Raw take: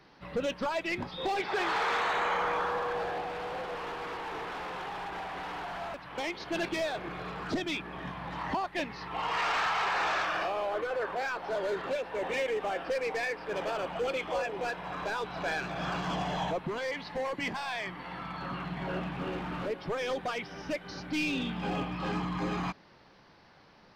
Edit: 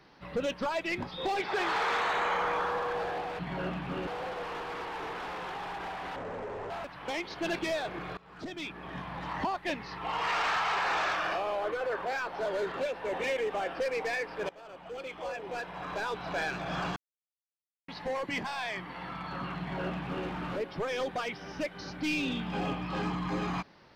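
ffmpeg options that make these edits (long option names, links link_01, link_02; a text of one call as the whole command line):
ffmpeg -i in.wav -filter_complex "[0:a]asplit=9[link_01][link_02][link_03][link_04][link_05][link_06][link_07][link_08][link_09];[link_01]atrim=end=3.392[link_10];[link_02]atrim=start=18.688:end=19.372[link_11];[link_03]atrim=start=3.388:end=5.484[link_12];[link_04]atrim=start=5.48:end=5.8,asetpts=PTS-STARTPTS,asetrate=26019,aresample=44100[link_13];[link_05]atrim=start=5.796:end=7.27,asetpts=PTS-STARTPTS,afade=type=out:start_time=1.47:duration=0.004:curve=hsin:silence=0.0668344[link_14];[link_06]atrim=start=7.27:end=13.59,asetpts=PTS-STARTPTS,afade=type=in:duration=0.86:silence=0.0668344,afade=type=out:start_time=6.316:duration=0.004:curve=hsin:silence=0.0841395[link_15];[link_07]atrim=start=13.59:end=16.06,asetpts=PTS-STARTPTS,afade=type=in:duration=1.62:silence=0.0841395,afade=type=out:start_time=2.466:duration=0.004:curve=hsin[link_16];[link_08]atrim=start=16.06:end=16.98,asetpts=PTS-STARTPTS,volume=0[link_17];[link_09]atrim=start=16.98,asetpts=PTS-STARTPTS,afade=type=in:duration=0.004:curve=hsin[link_18];[link_10][link_11]acrossfade=duration=0.004:curve1=hsin:curve2=hsin[link_19];[link_19][link_12]acrossfade=duration=0.004:curve1=hsin:curve2=hsin[link_20];[link_20][link_13]acrossfade=duration=0.004:curve1=hsin:curve2=hsin[link_21];[link_14][link_15][link_16][link_17][link_18]concat=n=5:v=0:a=1[link_22];[link_21][link_22]acrossfade=duration=0.004:curve1=hsin:curve2=hsin" out.wav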